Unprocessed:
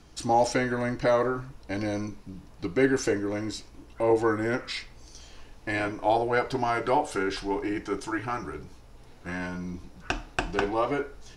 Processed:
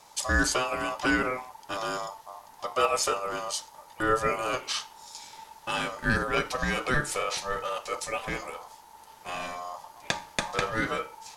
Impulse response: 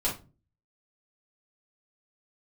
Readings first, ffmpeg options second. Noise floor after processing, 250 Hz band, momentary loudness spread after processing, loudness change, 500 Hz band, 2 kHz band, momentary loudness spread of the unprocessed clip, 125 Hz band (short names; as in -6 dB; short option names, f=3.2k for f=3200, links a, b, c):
-52 dBFS, -5.5 dB, 17 LU, -1.0 dB, -5.0 dB, +3.5 dB, 14 LU, -2.0 dB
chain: -af "crystalizer=i=3:c=0,aeval=exprs='val(0)*sin(2*PI*890*n/s)':c=same"